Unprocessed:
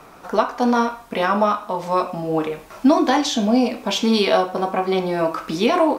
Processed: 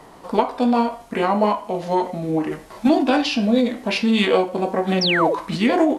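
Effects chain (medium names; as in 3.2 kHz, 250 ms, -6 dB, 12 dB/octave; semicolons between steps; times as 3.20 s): formant shift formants -4 st; painted sound fall, 5.01–5.35 s, 390–5900 Hz -20 dBFS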